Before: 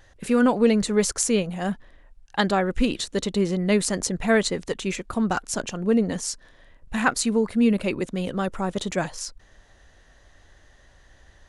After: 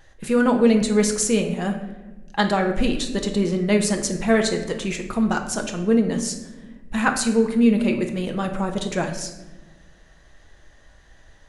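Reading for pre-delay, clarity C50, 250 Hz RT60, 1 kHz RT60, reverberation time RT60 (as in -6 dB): 5 ms, 8.5 dB, 1.9 s, 0.95 s, 1.2 s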